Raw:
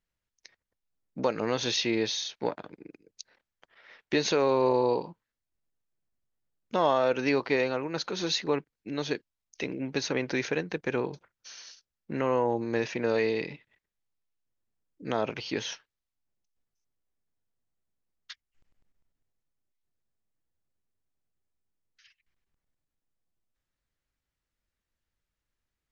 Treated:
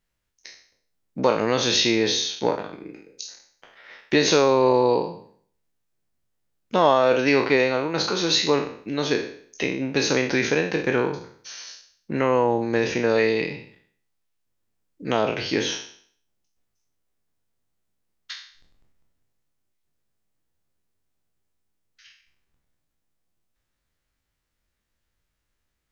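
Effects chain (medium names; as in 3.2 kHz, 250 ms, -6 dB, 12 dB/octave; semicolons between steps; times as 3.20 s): spectral sustain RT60 0.55 s; trim +6 dB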